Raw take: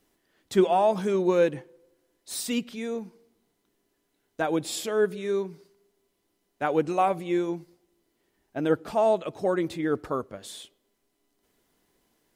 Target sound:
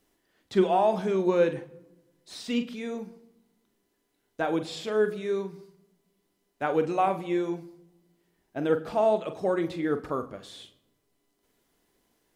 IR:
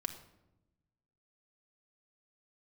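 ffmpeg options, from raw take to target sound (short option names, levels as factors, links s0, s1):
-filter_complex "[0:a]acrossover=split=5300[s0][s1];[s1]acompressor=threshold=0.00141:ratio=4:attack=1:release=60[s2];[s0][s2]amix=inputs=2:normalize=0,asplit=2[s3][s4];[1:a]atrim=start_sample=2205,adelay=42[s5];[s4][s5]afir=irnorm=-1:irlink=0,volume=0.355[s6];[s3][s6]amix=inputs=2:normalize=0,volume=0.841"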